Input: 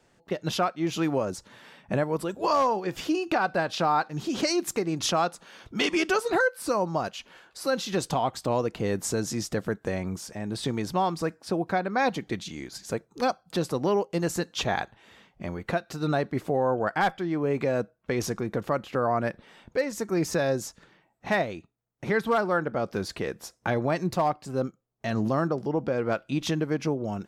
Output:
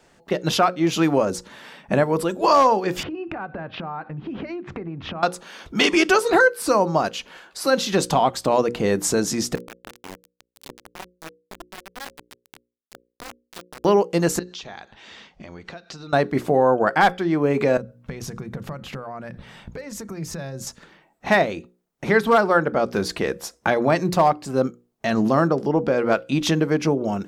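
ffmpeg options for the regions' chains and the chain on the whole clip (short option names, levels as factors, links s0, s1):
-filter_complex "[0:a]asettb=1/sr,asplit=3[s0][s1][s2];[s0]atrim=end=3.034[s3];[s1]atrim=start=3.03:end=5.23,asetpts=PTS-STARTPTS,afade=t=in:d=0.004:c=qsin,afade=t=out:st=2.196:d=0.004:c=qsin,lowpass=f=2500:w=0.5412,lowpass=f=2500:w=1.3066,equalizer=f=94:w=0.68:g=14.5,acompressor=threshold=0.0178:ratio=12:attack=3.2:release=140:knee=1:detection=peak[s4];[s2]atrim=start=5.226[s5];[s3][s4]acrossfade=d=0.004:c1=hsin:c2=qsin[s6];[s6][s5]acrossfade=d=0.004:c1=qsin:c2=hsin,asettb=1/sr,asplit=3[s7][s8][s9];[s7]atrim=end=9.554[s10];[s8]atrim=start=9.55:end=13.85,asetpts=PTS-STARTPTS,afade=t=in:d=0.004:c=qsin,afade=t=out:st=4.296:d=0.004:c=qsin,acompressor=threshold=0.0112:ratio=3:attack=3.2:release=140:knee=1:detection=peak,flanger=delay=20:depth=5.5:speed=1.5,aeval=exprs='val(0)*gte(abs(val(0)),0.0178)':c=same[s11];[s9]atrim=start=13.846[s12];[s10][s11]acrossfade=d=0.004:c1=hsin:c2=qsin[s13];[s13][s12]acrossfade=d=0.004:c1=qsin:c2=hsin,asettb=1/sr,asplit=3[s14][s15][s16];[s14]atrim=end=14.394[s17];[s15]atrim=start=14.39:end=16.13,asetpts=PTS-STARTPTS,afade=t=in:d=0.004:c=qsin,afade=t=out:st=1.736:d=0.004:c=qsin,lowpass=f=5600:w=0.5412,lowpass=f=5600:w=1.3066,aemphasis=mode=production:type=75fm,acompressor=threshold=0.00794:ratio=8:attack=3.2:release=140:knee=1:detection=peak[s18];[s16]atrim=start=16.126[s19];[s17][s18]acrossfade=d=0.004:c1=hsin:c2=qsin[s20];[s20][s19]acrossfade=d=0.004:c1=qsin:c2=hsin,asettb=1/sr,asplit=3[s21][s22][s23];[s21]atrim=end=17.774[s24];[s22]atrim=start=17.77:end=20.67,asetpts=PTS-STARTPTS,afade=t=in:d=0.004:c=qsin,afade=t=out:st=2.896:d=0.004:c=qsin,bandreject=f=60:t=h:w=6,bandreject=f=120:t=h:w=6,bandreject=f=180:t=h:w=6,bandreject=f=240:t=h:w=6,bandreject=f=300:t=h:w=6,acompressor=threshold=0.0112:ratio=6:attack=3.2:release=140:knee=1:detection=peak,lowshelf=f=210:t=q:w=1.5:g=9[s25];[s23]atrim=start=20.666[s26];[s24][s25]acrossfade=d=0.004:c1=hsin:c2=qsin[s27];[s27][s26]acrossfade=d=0.004:c1=qsin:c2=hsin,equalizer=f=110:t=o:w=0.41:g=-9,bandreject=f=60:t=h:w=6,bandreject=f=120:t=h:w=6,bandreject=f=180:t=h:w=6,bandreject=f=240:t=h:w=6,bandreject=f=300:t=h:w=6,bandreject=f=360:t=h:w=6,bandreject=f=420:t=h:w=6,bandreject=f=480:t=h:w=6,bandreject=f=540:t=h:w=6,volume=2.51"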